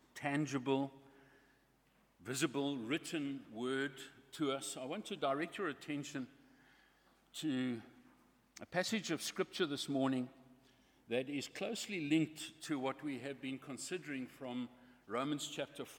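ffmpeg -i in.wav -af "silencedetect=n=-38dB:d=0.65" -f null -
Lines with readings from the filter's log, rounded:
silence_start: 0.86
silence_end: 2.28 | silence_duration: 1.42
silence_start: 6.23
silence_end: 7.37 | silence_duration: 1.14
silence_start: 7.76
silence_end: 8.57 | silence_duration: 0.81
silence_start: 10.24
silence_end: 11.11 | silence_duration: 0.87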